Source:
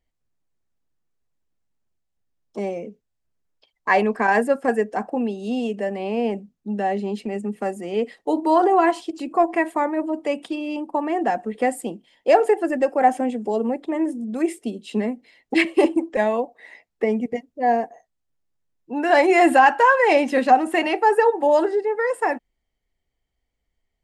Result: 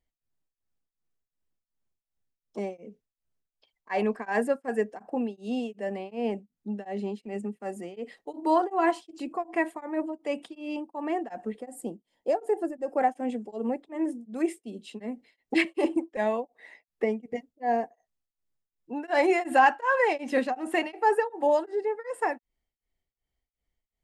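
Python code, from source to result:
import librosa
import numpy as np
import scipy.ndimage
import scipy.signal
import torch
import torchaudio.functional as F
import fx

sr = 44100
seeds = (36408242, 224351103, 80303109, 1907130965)

y = fx.peak_eq(x, sr, hz=2500.0, db=-11.5, octaves=2.0, at=(11.6, 12.97))
y = y * np.abs(np.cos(np.pi * 2.7 * np.arange(len(y)) / sr))
y = y * 10.0 ** (-5.0 / 20.0)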